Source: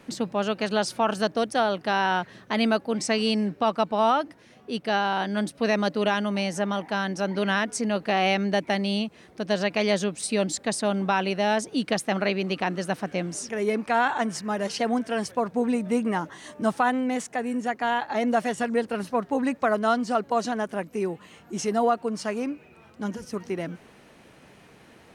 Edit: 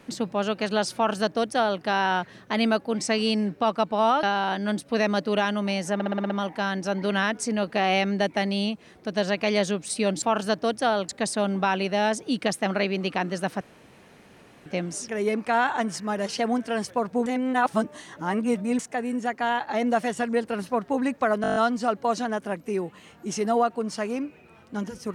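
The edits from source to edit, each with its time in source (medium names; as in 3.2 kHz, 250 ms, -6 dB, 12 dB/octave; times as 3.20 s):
0.95–1.82 s: copy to 10.55 s
4.23–4.92 s: delete
6.63 s: stutter 0.06 s, 7 plays
13.07 s: insert room tone 1.05 s
15.67–17.20 s: reverse
19.83 s: stutter 0.02 s, 8 plays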